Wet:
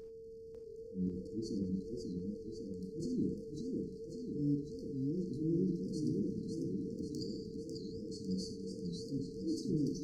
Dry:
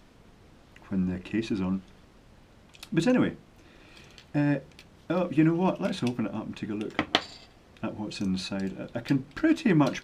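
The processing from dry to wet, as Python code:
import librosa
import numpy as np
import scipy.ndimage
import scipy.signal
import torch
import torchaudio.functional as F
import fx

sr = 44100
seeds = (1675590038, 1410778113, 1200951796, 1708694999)

y = fx.high_shelf(x, sr, hz=7400.0, db=-10.0)
y = fx.level_steps(y, sr, step_db=14)
y = fx.transient(y, sr, attack_db=-12, sustain_db=6)
y = y + 10.0 ** (-38.0 / 20.0) * np.sin(2.0 * np.pi * 450.0 * np.arange(len(y)) / sr)
y = fx.brickwall_bandstop(y, sr, low_hz=450.0, high_hz=4300.0)
y = fx.doubler(y, sr, ms=38.0, db=-14.0)
y = fx.echo_wet_highpass(y, sr, ms=101, feedback_pct=84, hz=3700.0, wet_db=-19.5)
y = fx.rev_gated(y, sr, seeds[0], gate_ms=110, shape='flat', drr_db=8.0)
y = fx.echo_warbled(y, sr, ms=548, feedback_pct=64, rate_hz=2.8, cents=158, wet_db=-4.0)
y = y * 10.0 ** (-4.0 / 20.0)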